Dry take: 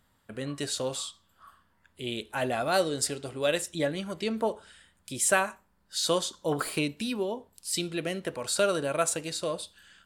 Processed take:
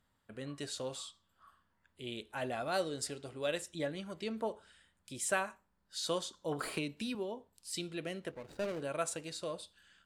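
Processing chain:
0:08.31–0:08.81: running median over 41 samples
high-shelf EQ 12,000 Hz −9.5 dB
0:06.63–0:07.15: multiband upward and downward compressor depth 70%
level −8.5 dB

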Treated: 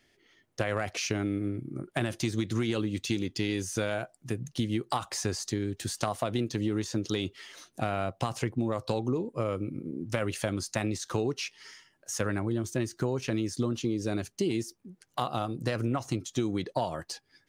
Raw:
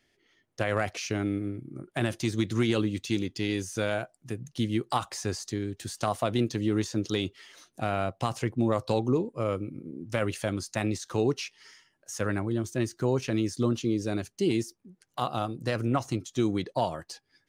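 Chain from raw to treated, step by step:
downward compressor, threshold −29 dBFS, peak gain reduction 9 dB
level +3.5 dB

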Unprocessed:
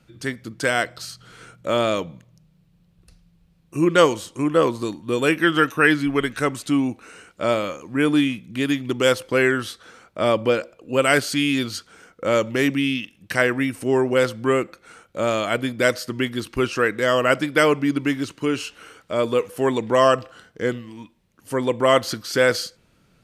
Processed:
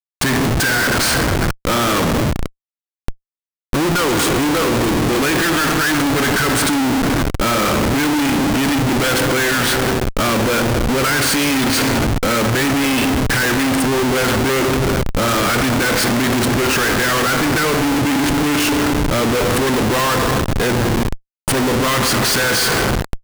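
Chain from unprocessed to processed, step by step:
running median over 3 samples
graphic EQ with 15 bands 630 Hz −10 dB, 1,600 Hz +7 dB, 10,000 Hz +12 dB
in parallel at −5 dB: gain into a clipping stage and back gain 9.5 dB
on the sum: leveller curve on the samples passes 3
downward compressor 16 to 1, threshold −11 dBFS, peak gain reduction 10.5 dB
on a send at −6.5 dB: convolution reverb RT60 2.3 s, pre-delay 30 ms
on the sum: comparator with hysteresis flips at −22.5 dBFS

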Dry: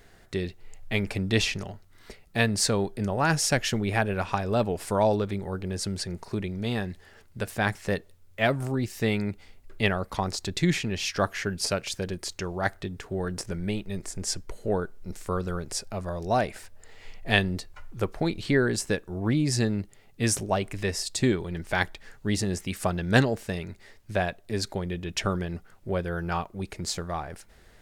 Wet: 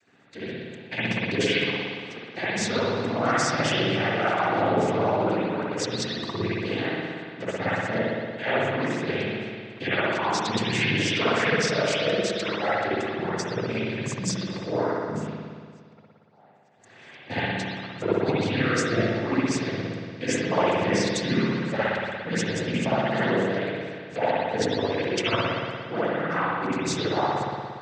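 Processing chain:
spectral magnitudes quantised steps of 15 dB
0:15.18–0:17.29: gate with flip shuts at −30 dBFS, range −38 dB
automatic gain control gain up to 6.5 dB
brickwall limiter −14 dBFS, peak gain reduction 11.5 dB
harmonic and percussive parts rebalanced harmonic −17 dB
cochlear-implant simulation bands 16
spring reverb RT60 1.9 s, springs 58 ms, chirp 70 ms, DRR −10 dB
level −4 dB

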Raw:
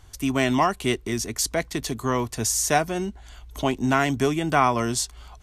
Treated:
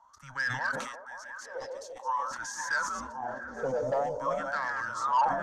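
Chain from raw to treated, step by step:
feedback delay that plays each chunk backwards 545 ms, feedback 53%, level −7 dB
0:00.71–0:02.31: guitar amp tone stack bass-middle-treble 10-0-10
in parallel at +2.5 dB: brickwall limiter −13.5 dBFS, peak gain reduction 8 dB
on the sum: LFO wah 0.48 Hz 600–1,800 Hz, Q 20
frequency shifter −130 Hz
soft clipping −27 dBFS, distortion −14 dB
graphic EQ with 15 bands 400 Hz −6 dB, 1,000 Hz +3 dB, 2,500 Hz −11 dB, 6,300 Hz +10 dB
on a send: echo through a band-pass that steps 172 ms, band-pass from 280 Hz, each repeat 0.7 octaves, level −3 dB
on the sum: level that may fall only so fast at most 54 dB per second
level +6 dB

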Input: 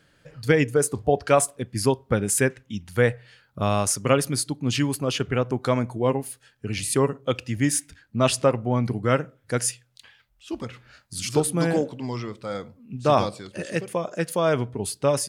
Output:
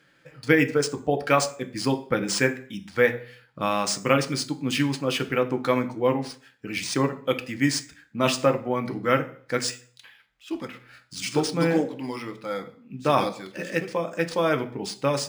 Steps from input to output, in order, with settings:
convolution reverb RT60 0.50 s, pre-delay 3 ms, DRR 7 dB
linearly interpolated sample-rate reduction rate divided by 3×
level −1 dB

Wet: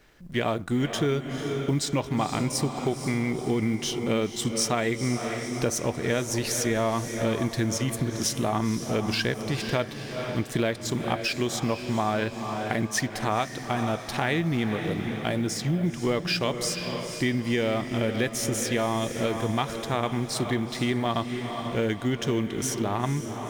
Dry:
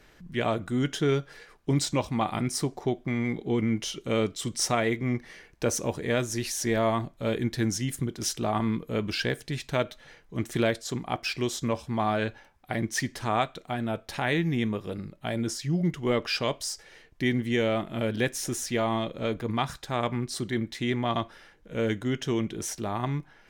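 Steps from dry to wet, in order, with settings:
mu-law and A-law mismatch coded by A
feedback delay with all-pass diffusion 485 ms, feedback 50%, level −10 dB
downward compressor 3 to 1, threshold −30 dBFS, peak gain reduction 8 dB
level +6.5 dB

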